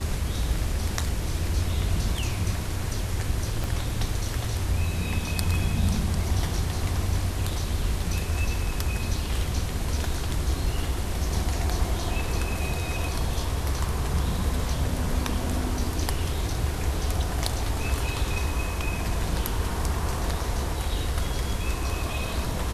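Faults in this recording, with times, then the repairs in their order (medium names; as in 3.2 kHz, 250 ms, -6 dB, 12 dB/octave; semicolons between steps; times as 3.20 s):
3.64 s: pop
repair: de-click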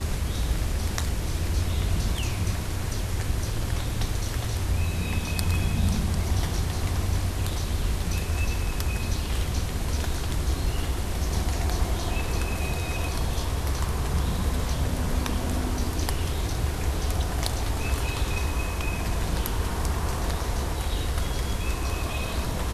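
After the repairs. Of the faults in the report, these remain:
3.64 s: pop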